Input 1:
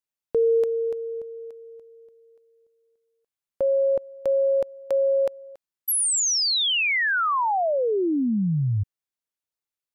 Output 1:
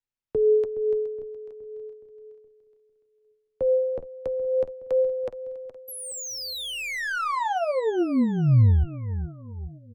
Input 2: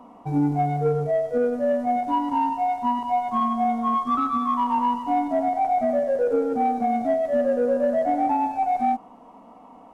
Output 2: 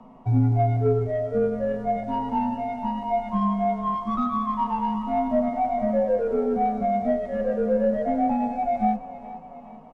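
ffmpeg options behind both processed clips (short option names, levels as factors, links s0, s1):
-filter_complex "[0:a]aemphasis=mode=reproduction:type=bsi,aecho=1:1:419|838|1257|1676|2095:0.2|0.102|0.0519|0.0265|0.0135,afreqshift=-29,acrossover=split=1500[s0][s1];[s0]flanger=delay=7.9:depth=4.9:regen=29:speed=0.36:shape=sinusoidal[s2];[s1]asoftclip=type=tanh:threshold=0.0251[s3];[s2][s3]amix=inputs=2:normalize=0"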